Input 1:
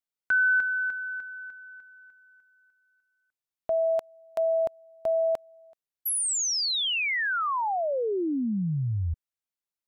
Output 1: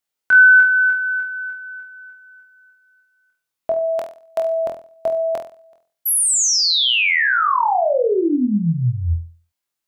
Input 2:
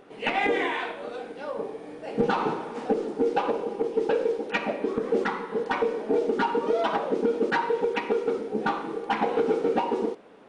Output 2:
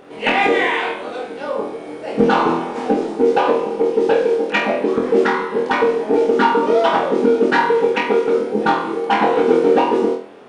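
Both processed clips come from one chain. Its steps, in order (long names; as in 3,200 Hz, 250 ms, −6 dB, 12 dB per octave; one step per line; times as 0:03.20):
low-shelf EQ 92 Hz −6 dB
on a send: flutter between parallel walls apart 4.1 metres, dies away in 0.39 s
on the sum: level +8 dB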